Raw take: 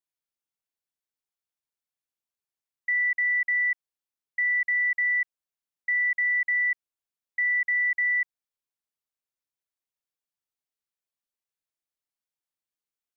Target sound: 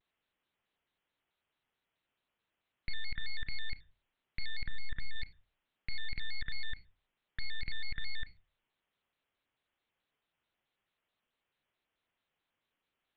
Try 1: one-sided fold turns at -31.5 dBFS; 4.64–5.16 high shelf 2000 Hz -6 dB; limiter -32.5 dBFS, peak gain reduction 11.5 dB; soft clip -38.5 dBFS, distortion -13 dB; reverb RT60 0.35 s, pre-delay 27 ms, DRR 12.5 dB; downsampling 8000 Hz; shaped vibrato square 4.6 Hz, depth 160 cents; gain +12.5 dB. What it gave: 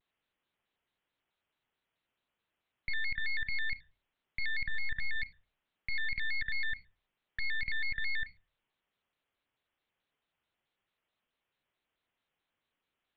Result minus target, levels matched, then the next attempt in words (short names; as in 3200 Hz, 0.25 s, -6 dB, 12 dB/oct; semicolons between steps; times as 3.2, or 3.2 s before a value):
one-sided fold: distortion -10 dB
one-sided fold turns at -39 dBFS; 4.64–5.16 high shelf 2000 Hz -6 dB; limiter -32.5 dBFS, peak gain reduction 11.5 dB; soft clip -38.5 dBFS, distortion -15 dB; reverb RT60 0.35 s, pre-delay 27 ms, DRR 12.5 dB; downsampling 8000 Hz; shaped vibrato square 4.6 Hz, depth 160 cents; gain +12.5 dB